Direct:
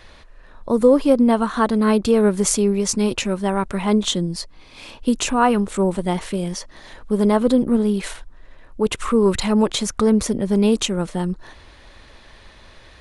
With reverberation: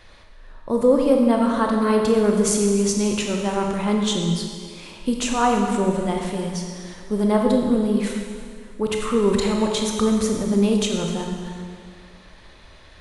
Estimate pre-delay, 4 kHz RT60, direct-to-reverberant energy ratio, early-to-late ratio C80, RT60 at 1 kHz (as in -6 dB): 10 ms, 1.8 s, 1.0 dB, 4.0 dB, 2.0 s